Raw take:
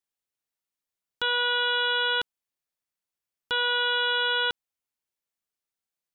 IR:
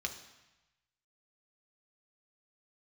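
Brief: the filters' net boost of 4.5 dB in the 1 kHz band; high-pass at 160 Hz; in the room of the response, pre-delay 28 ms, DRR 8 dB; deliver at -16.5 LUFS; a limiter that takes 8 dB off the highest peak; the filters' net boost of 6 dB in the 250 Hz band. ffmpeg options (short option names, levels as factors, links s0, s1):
-filter_complex "[0:a]highpass=160,equalizer=f=250:t=o:g=8.5,equalizer=f=1000:t=o:g=5,alimiter=limit=0.0708:level=0:latency=1,asplit=2[s0][s1];[1:a]atrim=start_sample=2205,adelay=28[s2];[s1][s2]afir=irnorm=-1:irlink=0,volume=0.335[s3];[s0][s3]amix=inputs=2:normalize=0,volume=5.31"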